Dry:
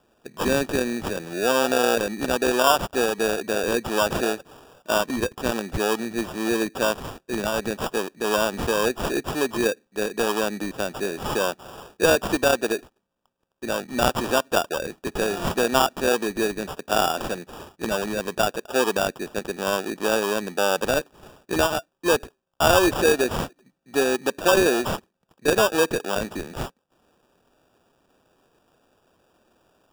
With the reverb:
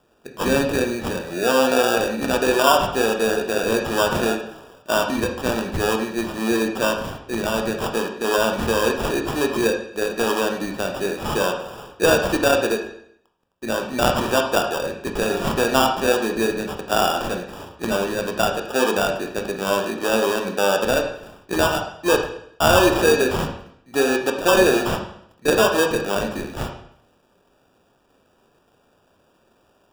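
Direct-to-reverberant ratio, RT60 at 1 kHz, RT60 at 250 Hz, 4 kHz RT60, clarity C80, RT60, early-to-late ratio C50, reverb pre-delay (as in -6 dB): 2.5 dB, 0.65 s, 0.70 s, 0.65 s, 9.0 dB, 0.70 s, 6.5 dB, 18 ms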